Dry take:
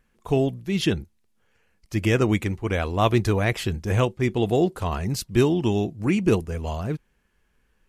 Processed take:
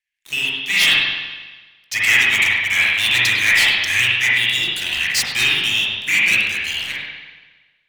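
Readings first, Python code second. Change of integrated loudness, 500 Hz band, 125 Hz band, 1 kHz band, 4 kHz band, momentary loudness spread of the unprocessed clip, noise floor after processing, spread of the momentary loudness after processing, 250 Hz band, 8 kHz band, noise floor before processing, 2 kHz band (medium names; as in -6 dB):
+8.5 dB, -16.5 dB, -13.5 dB, -3.0 dB, +19.0 dB, 8 LU, -62 dBFS, 13 LU, -15.5 dB, +14.0 dB, -68 dBFS, +19.0 dB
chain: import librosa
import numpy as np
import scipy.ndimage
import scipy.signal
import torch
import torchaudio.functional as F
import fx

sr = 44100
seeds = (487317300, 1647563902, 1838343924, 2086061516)

y = scipy.signal.sosfilt(scipy.signal.ellip(4, 1.0, 40, 1900.0, 'highpass', fs=sr, output='sos'), x)
y = fx.high_shelf(y, sr, hz=9600.0, db=-11.0)
y = fx.leveller(y, sr, passes=5)
y = y + 10.0 ** (-20.0 / 20.0) * np.pad(y, (int(101 * sr / 1000.0), 0))[:len(y)]
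y = fx.rev_spring(y, sr, rt60_s=1.3, pass_ms=(41, 58), chirp_ms=70, drr_db=-6.0)
y = y * librosa.db_to_amplitude(2.5)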